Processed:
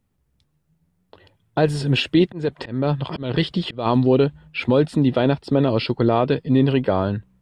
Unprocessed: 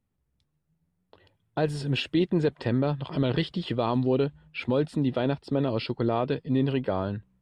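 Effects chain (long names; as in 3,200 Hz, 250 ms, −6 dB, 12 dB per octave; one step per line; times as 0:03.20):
0:02.26–0:03.86: volume swells 272 ms
level +8 dB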